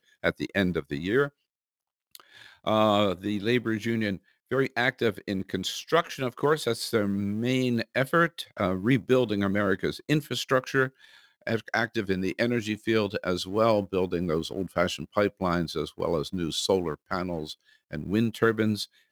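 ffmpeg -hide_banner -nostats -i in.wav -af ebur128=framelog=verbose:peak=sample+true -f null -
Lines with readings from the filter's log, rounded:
Integrated loudness:
  I:         -27.3 LUFS
  Threshold: -37.6 LUFS
Loudness range:
  LRA:         2.5 LU
  Threshold: -47.5 LUFS
  LRA low:   -28.6 LUFS
  LRA high:  -26.1 LUFS
Sample peak:
  Peak:       -8.5 dBFS
True peak:
  Peak:       -8.4 dBFS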